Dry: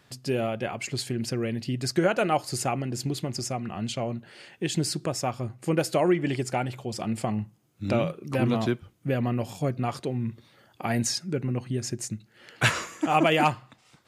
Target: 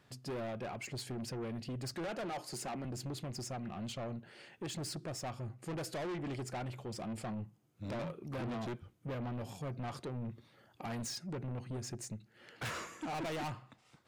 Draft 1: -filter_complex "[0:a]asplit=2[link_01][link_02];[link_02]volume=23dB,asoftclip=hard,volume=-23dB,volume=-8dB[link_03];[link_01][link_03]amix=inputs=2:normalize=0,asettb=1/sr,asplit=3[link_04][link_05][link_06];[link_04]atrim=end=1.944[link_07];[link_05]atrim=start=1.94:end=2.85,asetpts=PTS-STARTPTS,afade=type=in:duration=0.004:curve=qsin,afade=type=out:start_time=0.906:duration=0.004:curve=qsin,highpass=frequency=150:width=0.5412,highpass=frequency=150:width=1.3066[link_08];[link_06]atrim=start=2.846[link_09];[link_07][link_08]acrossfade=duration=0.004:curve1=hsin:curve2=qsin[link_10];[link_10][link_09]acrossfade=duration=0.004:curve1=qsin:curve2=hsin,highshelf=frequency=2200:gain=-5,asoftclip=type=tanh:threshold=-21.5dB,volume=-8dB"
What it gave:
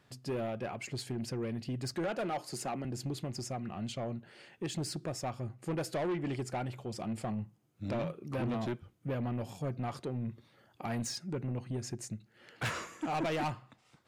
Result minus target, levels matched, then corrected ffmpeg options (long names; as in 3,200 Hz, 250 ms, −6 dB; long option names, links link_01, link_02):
soft clipping: distortion −5 dB
-filter_complex "[0:a]asplit=2[link_01][link_02];[link_02]volume=23dB,asoftclip=hard,volume=-23dB,volume=-8dB[link_03];[link_01][link_03]amix=inputs=2:normalize=0,asettb=1/sr,asplit=3[link_04][link_05][link_06];[link_04]atrim=end=1.944[link_07];[link_05]atrim=start=1.94:end=2.85,asetpts=PTS-STARTPTS,afade=type=in:duration=0.004:curve=qsin,afade=type=out:start_time=0.906:duration=0.004:curve=qsin,highpass=frequency=150:width=0.5412,highpass=frequency=150:width=1.3066[link_08];[link_06]atrim=start=2.846[link_09];[link_07][link_08]acrossfade=duration=0.004:curve1=hsin:curve2=qsin[link_10];[link_10][link_09]acrossfade=duration=0.004:curve1=qsin:curve2=hsin,highshelf=frequency=2200:gain=-5,asoftclip=type=tanh:threshold=-29dB,volume=-8dB"